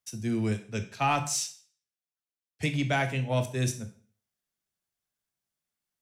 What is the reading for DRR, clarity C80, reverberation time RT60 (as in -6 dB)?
7.0 dB, 16.0 dB, 0.45 s